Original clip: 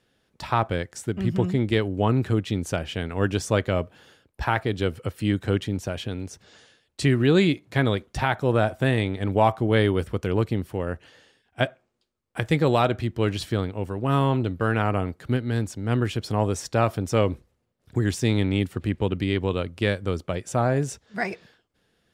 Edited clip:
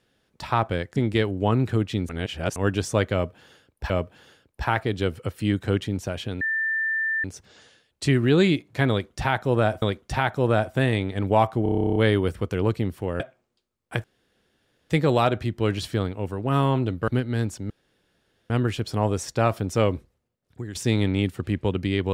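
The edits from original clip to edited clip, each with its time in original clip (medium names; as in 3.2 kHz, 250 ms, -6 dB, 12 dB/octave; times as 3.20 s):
0.96–1.53 s: delete
2.66–3.13 s: reverse
3.70–4.47 s: loop, 2 plays
6.21 s: add tone 1.78 kHz -22 dBFS 0.83 s
7.87–8.79 s: loop, 2 plays
9.68 s: stutter 0.03 s, 12 plays
10.92–11.64 s: delete
12.48 s: insert room tone 0.86 s
14.66–15.25 s: delete
15.87 s: insert room tone 0.80 s
17.21–18.12 s: fade out, to -14.5 dB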